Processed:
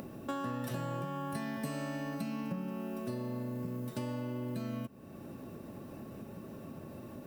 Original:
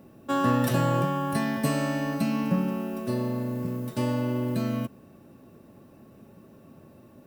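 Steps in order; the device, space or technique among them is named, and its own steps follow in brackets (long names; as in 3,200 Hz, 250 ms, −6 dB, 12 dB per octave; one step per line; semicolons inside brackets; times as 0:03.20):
upward and downward compression (upward compression, threshold −41 dBFS; downward compressor 5 to 1, threshold −38 dBFS, peak gain reduction 17 dB)
level +1.5 dB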